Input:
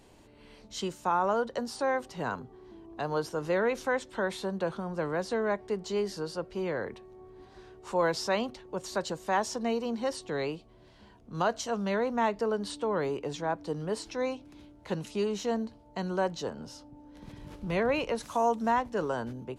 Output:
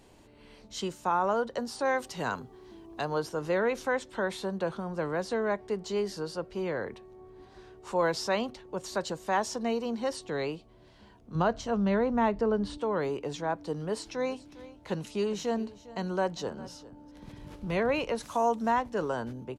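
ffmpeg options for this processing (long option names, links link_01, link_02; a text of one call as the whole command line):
ffmpeg -i in.wav -filter_complex "[0:a]asettb=1/sr,asplit=3[link_01][link_02][link_03];[link_01]atrim=end=1.854[link_04];[link_02]atrim=start=1.85:end=3.05,asetpts=PTS-STARTPTS,afade=type=in:duration=0.004:curve=qsin,afade=type=out:start_time=1.196:duration=0.004:curve=qsin,highshelf=frequency=2500:gain=9[link_05];[link_03]atrim=start=3.046[link_06];[link_04][link_05]acrossfade=duration=0.004:curve1=hsin:curve2=qsin[link_07];[link_07][link_06]acrossfade=duration=0.004:curve1=qsin:curve2=hsin,asettb=1/sr,asplit=3[link_08][link_09][link_10];[link_08]atrim=end=11.354[link_11];[link_09]atrim=start=11.35:end=12.78,asetpts=PTS-STARTPTS,afade=type=in:duration=0.004:curve=qsin,afade=type=out:start_time=1.426:duration=0.004:curve=qsin,aemphasis=mode=reproduction:type=bsi[link_12];[link_10]atrim=start=12.776[link_13];[link_11][link_12]acrossfade=duration=0.004:curve1=hsin:curve2=qsin[link_14];[link_14][link_13]acrossfade=duration=0.004:curve1=qsin:curve2=hsin,asplit=3[link_15][link_16][link_17];[link_15]afade=type=out:start_time=14.13:duration=0.02[link_18];[link_16]aecho=1:1:404:0.126,afade=type=in:start_time=14.13:duration=0.02,afade=type=out:start_time=17.1:duration=0.02[link_19];[link_17]afade=type=in:start_time=17.1:duration=0.02[link_20];[link_18][link_19][link_20]amix=inputs=3:normalize=0" out.wav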